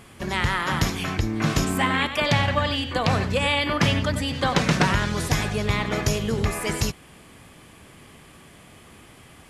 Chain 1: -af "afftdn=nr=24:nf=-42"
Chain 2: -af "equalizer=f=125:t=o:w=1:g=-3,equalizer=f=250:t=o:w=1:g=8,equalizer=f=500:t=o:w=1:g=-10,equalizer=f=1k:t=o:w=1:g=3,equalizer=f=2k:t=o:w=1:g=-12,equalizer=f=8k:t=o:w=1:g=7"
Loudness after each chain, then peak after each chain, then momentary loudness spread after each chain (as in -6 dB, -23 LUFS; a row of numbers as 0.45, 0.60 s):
-23.5, -24.0 LUFS; -6.0, -6.5 dBFS; 5, 4 LU